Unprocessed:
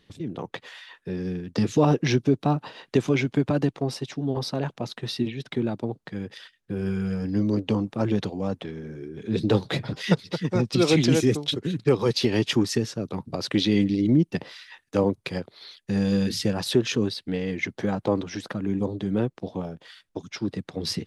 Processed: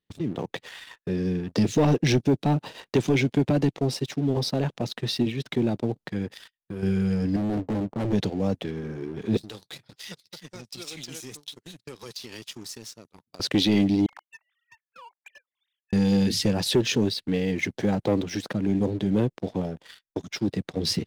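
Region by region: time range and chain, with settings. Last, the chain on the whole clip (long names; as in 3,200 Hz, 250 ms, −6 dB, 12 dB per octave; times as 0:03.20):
0:06.30–0:06.83: high-shelf EQ 9,400 Hz +10.5 dB + downward compressor 1.5 to 1, threshold −47 dBFS
0:07.36–0:08.13: inverse Chebyshev low-pass filter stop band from 2,200 Hz + hard clipping −27.5 dBFS
0:09.37–0:13.40: first-order pre-emphasis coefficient 0.9 + downward compressor 4 to 1, threshold −38 dBFS
0:14.06–0:15.93: three sine waves on the formant tracks + elliptic high-pass filter 850 Hz, stop band 70 dB + downward compressor 4 to 1, threshold −44 dBFS
whole clip: noise gate −48 dBFS, range −17 dB; leveller curve on the samples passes 2; dynamic equaliser 1,200 Hz, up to −7 dB, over −39 dBFS, Q 1.4; level −4 dB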